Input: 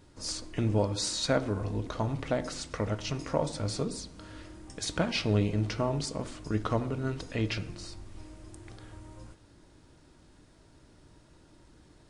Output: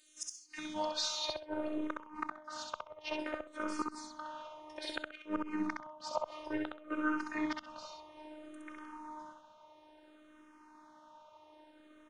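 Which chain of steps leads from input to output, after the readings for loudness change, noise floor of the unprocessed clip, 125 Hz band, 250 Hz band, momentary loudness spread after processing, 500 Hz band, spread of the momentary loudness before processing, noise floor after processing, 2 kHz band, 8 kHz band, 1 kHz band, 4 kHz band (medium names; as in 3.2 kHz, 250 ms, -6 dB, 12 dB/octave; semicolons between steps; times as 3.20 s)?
-8.0 dB, -59 dBFS, -31.5 dB, -5.5 dB, 22 LU, -9.5 dB, 21 LU, -61 dBFS, -2.0 dB, -8.0 dB, -2.0 dB, -5.0 dB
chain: band-pass sweep 6 kHz -> 1.1 kHz, 0.30–1.25 s; saturation -27 dBFS, distortion -17 dB; robot voice 307 Hz; inverted gate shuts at -33 dBFS, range -25 dB; feedback delay 65 ms, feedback 20%, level -3.5 dB; barber-pole phaser -0.59 Hz; trim +16.5 dB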